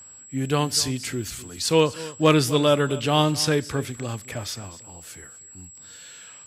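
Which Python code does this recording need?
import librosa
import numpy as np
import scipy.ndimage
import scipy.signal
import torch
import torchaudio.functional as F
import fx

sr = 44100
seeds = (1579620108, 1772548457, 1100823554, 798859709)

y = fx.fix_declip(x, sr, threshold_db=-5.5)
y = fx.notch(y, sr, hz=7700.0, q=30.0)
y = fx.fix_echo_inverse(y, sr, delay_ms=251, level_db=-17.5)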